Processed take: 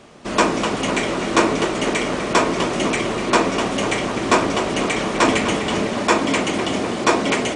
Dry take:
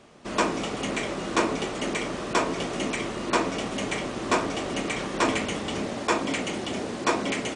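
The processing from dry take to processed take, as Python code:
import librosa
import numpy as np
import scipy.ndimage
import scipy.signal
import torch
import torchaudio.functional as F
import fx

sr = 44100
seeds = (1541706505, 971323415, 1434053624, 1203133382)

y = fx.echo_tape(x, sr, ms=250, feedback_pct=77, wet_db=-8.5, lp_hz=3600.0, drive_db=9.0, wow_cents=12)
y = y * librosa.db_to_amplitude(7.5)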